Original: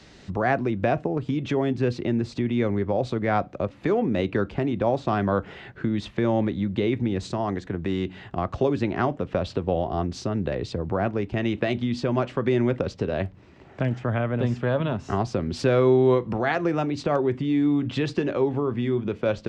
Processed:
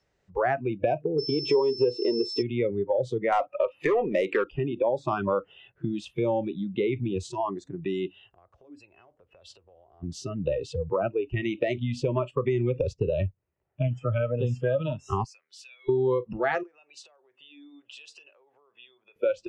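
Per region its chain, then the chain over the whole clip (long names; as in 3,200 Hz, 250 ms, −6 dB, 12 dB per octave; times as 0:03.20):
0:01.18–0:02.41: low-shelf EQ 88 Hz −10.5 dB + steady tone 5,300 Hz −28 dBFS + hollow resonant body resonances 430/950 Hz, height 15 dB, ringing for 25 ms
0:03.32–0:04.44: notch filter 1,500 Hz, Q 26 + mid-hump overdrive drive 17 dB, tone 3,000 Hz, clips at −11 dBFS
0:08.14–0:10.03: parametric band 160 Hz −9.5 dB 0.67 octaves + downward compressor 2.5 to 1, threshold −37 dBFS
0:11.76–0:13.88: noise gate −39 dBFS, range −10 dB + low-shelf EQ 130 Hz +6 dB
0:15.24–0:15.89: Chebyshev high-pass filter 2,100 Hz + high-shelf EQ 3,100 Hz −5 dB + downward compressor 3 to 1, threshold −42 dBFS
0:16.63–0:19.16: high-pass filter 640 Hz + downward compressor, threshold −38 dBFS
whole clip: noise reduction from a noise print of the clip's start 25 dB; octave-band graphic EQ 250/500/4,000 Hz −11/+5/−9 dB; downward compressor 4 to 1, threshold −25 dBFS; level +3 dB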